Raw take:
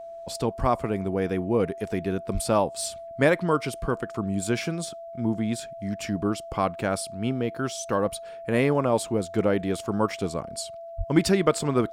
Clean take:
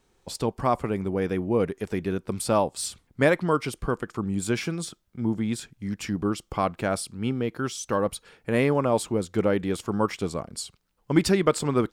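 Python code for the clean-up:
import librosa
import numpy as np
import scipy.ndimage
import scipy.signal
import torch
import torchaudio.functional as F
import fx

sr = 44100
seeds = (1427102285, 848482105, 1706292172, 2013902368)

y = fx.notch(x, sr, hz=670.0, q=30.0)
y = fx.highpass(y, sr, hz=140.0, slope=24, at=(0.6, 0.72), fade=0.02)
y = fx.highpass(y, sr, hz=140.0, slope=24, at=(2.33, 2.45), fade=0.02)
y = fx.highpass(y, sr, hz=140.0, slope=24, at=(10.97, 11.09), fade=0.02)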